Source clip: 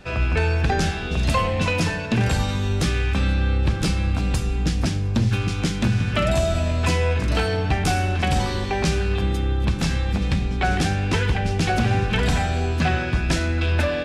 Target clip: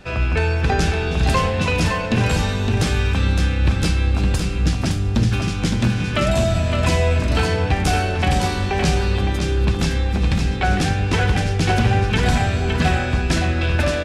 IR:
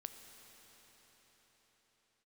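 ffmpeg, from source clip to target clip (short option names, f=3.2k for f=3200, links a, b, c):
-filter_complex "[0:a]aecho=1:1:563:0.531,asplit=2[a][b];[1:a]atrim=start_sample=2205[c];[b][c]afir=irnorm=-1:irlink=0,volume=-8.5dB[d];[a][d]amix=inputs=2:normalize=0"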